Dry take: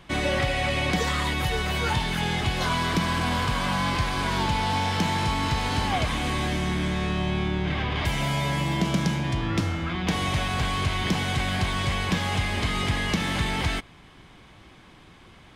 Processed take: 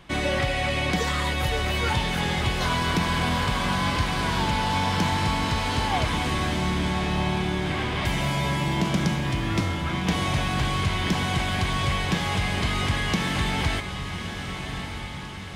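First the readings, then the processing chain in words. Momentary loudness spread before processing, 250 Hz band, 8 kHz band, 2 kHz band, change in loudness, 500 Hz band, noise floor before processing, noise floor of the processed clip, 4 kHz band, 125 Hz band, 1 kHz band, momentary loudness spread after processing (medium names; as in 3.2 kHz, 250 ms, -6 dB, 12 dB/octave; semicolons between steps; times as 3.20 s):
2 LU, +1.0 dB, +1.0 dB, +1.0 dB, +0.5 dB, +1.0 dB, -51 dBFS, -34 dBFS, +1.0 dB, +1.0 dB, +1.0 dB, 3 LU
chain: echo that smears into a reverb 1217 ms, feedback 55%, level -8 dB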